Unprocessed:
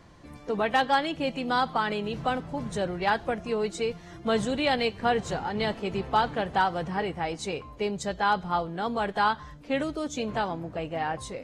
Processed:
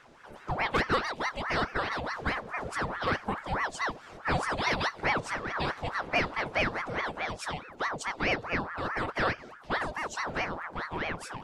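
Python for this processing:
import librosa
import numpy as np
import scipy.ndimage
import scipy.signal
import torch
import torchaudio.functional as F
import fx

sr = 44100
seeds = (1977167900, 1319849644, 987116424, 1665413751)

y = fx.dynamic_eq(x, sr, hz=1700.0, q=1.3, threshold_db=-39.0, ratio=4.0, max_db=-4)
y = fx.ring_lfo(y, sr, carrier_hz=930.0, swing_pct=70, hz=4.7)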